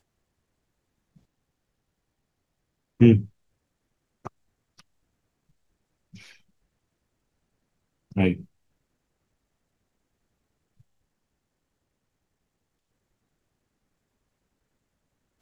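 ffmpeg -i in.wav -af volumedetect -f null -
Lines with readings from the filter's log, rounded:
mean_volume: -32.4 dB
max_volume: -4.1 dB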